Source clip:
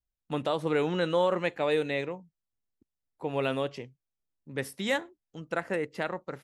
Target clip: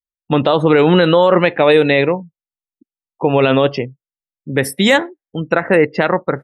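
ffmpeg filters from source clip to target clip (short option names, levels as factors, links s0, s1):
-af "afftdn=nr=35:nf=-49,alimiter=level_in=11.2:limit=0.891:release=50:level=0:latency=1,volume=0.891"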